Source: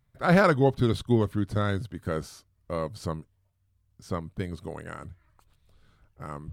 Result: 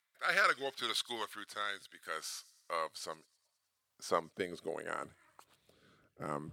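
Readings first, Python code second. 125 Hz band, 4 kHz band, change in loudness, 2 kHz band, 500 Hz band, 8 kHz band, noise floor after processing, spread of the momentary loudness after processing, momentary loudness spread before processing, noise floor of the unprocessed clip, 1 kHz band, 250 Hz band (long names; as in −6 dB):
−27.0 dB, +2.5 dB, −10.0 dB, −2.5 dB, −12.5 dB, +2.5 dB, −84 dBFS, 16 LU, 19 LU, −70 dBFS, −6.0 dB, −20.5 dB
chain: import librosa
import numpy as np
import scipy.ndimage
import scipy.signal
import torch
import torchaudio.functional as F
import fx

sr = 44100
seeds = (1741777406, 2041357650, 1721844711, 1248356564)

y = fx.echo_wet_highpass(x, sr, ms=105, feedback_pct=59, hz=4300.0, wet_db=-19.5)
y = fx.filter_sweep_highpass(y, sr, from_hz=1500.0, to_hz=250.0, start_s=2.23, end_s=5.91, q=0.77)
y = fx.rotary(y, sr, hz=0.7)
y = y * 10.0 ** (5.0 / 20.0)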